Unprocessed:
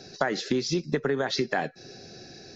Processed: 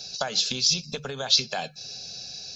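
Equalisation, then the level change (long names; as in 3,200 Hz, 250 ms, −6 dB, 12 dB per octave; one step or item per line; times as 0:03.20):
high shelf with overshoot 1,600 Hz +12.5 dB, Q 1.5
mains-hum notches 50/100/150/200 Hz
phaser with its sweep stopped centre 800 Hz, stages 4
0.0 dB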